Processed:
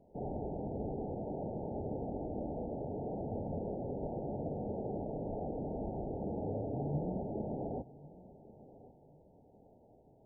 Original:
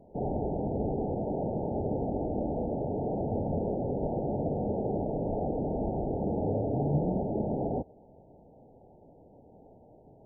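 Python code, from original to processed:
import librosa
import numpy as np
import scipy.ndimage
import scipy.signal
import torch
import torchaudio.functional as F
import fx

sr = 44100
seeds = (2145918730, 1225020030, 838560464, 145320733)

y = fx.echo_feedback(x, sr, ms=1095, feedback_pct=29, wet_db=-19)
y = F.gain(torch.from_numpy(y), -8.0).numpy()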